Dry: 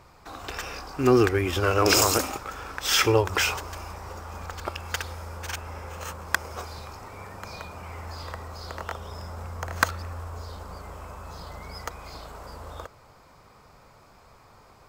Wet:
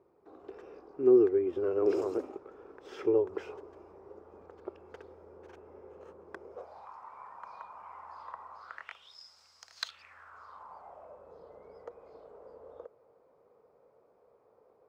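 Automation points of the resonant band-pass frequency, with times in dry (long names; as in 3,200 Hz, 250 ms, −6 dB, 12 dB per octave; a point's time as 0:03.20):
resonant band-pass, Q 4.4
0:06.47 390 Hz
0:06.90 1,000 Hz
0:08.57 1,000 Hz
0:09.19 4,900 Hz
0:09.75 4,900 Hz
0:10.19 1,700 Hz
0:11.28 470 Hz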